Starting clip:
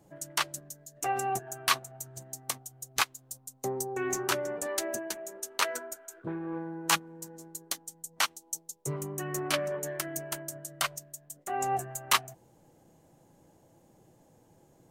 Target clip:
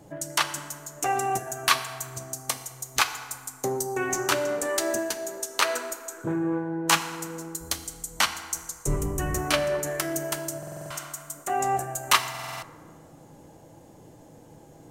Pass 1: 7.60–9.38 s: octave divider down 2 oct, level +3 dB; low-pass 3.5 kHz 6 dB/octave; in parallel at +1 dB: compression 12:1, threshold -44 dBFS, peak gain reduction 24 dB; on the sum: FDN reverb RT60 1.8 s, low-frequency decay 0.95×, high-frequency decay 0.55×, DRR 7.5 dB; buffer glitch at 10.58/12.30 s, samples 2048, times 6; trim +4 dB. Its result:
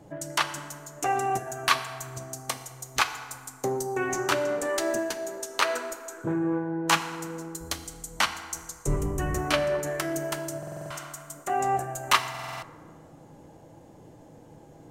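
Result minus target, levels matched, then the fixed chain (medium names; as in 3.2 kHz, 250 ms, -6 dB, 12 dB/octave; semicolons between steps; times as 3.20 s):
8 kHz band -3.5 dB
7.60–9.38 s: octave divider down 2 oct, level +3 dB; low-pass 11 kHz 6 dB/octave; in parallel at +1 dB: compression 12:1, threshold -44 dBFS, peak gain reduction 25.5 dB; on the sum: FDN reverb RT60 1.8 s, low-frequency decay 0.95×, high-frequency decay 0.55×, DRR 7.5 dB; buffer glitch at 10.58/12.30 s, samples 2048, times 6; trim +4 dB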